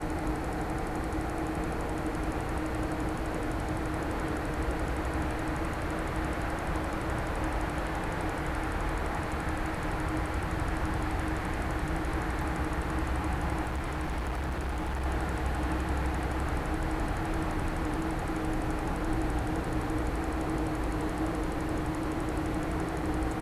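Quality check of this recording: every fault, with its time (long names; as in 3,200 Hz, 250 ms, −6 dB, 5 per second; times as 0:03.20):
0:13.66–0:15.06: clipping −29 dBFS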